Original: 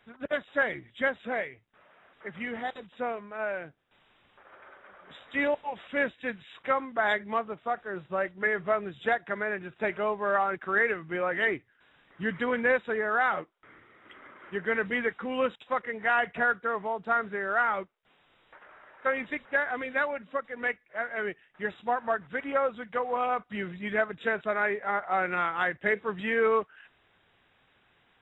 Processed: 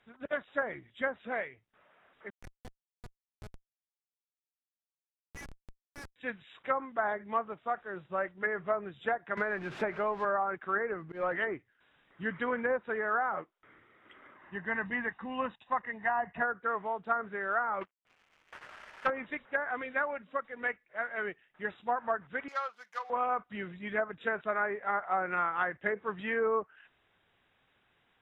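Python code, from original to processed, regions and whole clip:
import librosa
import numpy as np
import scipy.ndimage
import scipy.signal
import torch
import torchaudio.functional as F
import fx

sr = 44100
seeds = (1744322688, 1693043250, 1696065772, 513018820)

y = fx.chain(x, sr, fx.cheby2_highpass(hz=340.0, order=4, stop_db=50),
    fx.schmitt(flips_db=-28.5), at=(2.3, 6.16))
y = fx.chain(y, sr, fx.zero_step(step_db=-41.0),
    fx.band_squash(depth_pct=100), at=(9.37, 10.25))
y = fx.chain(y, sr, fx.lowpass(hz=1300.0, slope=6),
    fx.leveller(passes=1),
    fx.auto_swell(attack_ms=109.0), at=(10.92, 11.36))
y = fx.chain(y, sr, fx.high_shelf(hz=3300.0, db=-9.5),
    fx.comb(ms=1.1, depth=0.58), at=(14.36, 16.42))
y = fx.chain(y, sr, fx.cvsd(bps=16000),
    fx.tilt_shelf(db=-4.0, hz=850.0),
    fx.leveller(passes=2), at=(17.81, 19.1))
y = fx.chain(y, sr, fx.median_filter(points=15),
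    fx.highpass(hz=1100.0, slope=12), at=(22.48, 23.1))
y = fx.env_lowpass_down(y, sr, base_hz=1000.0, full_db=-21.5)
y = fx.dynamic_eq(y, sr, hz=1200.0, q=1.0, threshold_db=-38.0, ratio=4.0, max_db=5)
y = y * 10.0 ** (-5.5 / 20.0)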